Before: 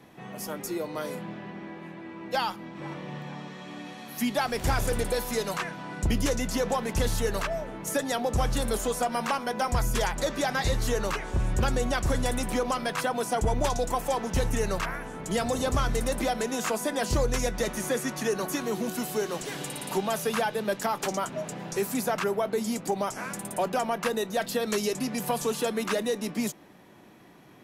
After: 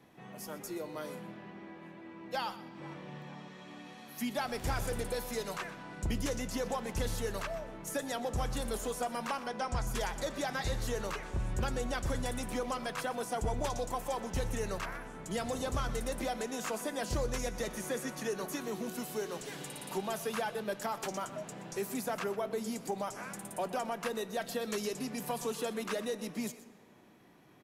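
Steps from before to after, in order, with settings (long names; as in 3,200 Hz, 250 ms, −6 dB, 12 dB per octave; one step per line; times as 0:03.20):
0:09.47–0:09.87: low-pass filter 8,600 Hz 24 dB per octave
single-tap delay 124 ms −15.5 dB
convolution reverb RT60 2.1 s, pre-delay 10 ms, DRR 18 dB
level −8 dB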